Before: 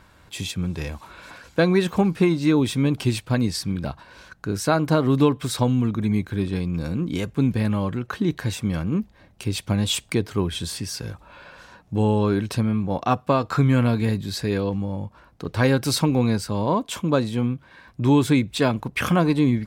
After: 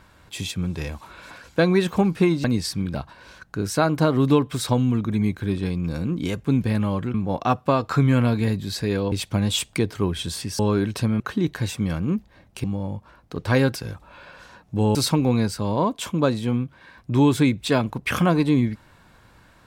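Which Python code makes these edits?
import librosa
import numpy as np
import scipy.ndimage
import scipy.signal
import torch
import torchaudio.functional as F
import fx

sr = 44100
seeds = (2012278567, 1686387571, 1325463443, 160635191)

y = fx.edit(x, sr, fx.cut(start_s=2.44, length_s=0.9),
    fx.swap(start_s=8.04, length_s=1.44, other_s=12.75, other_length_s=1.98),
    fx.move(start_s=10.95, length_s=1.19, to_s=15.85), tone=tone)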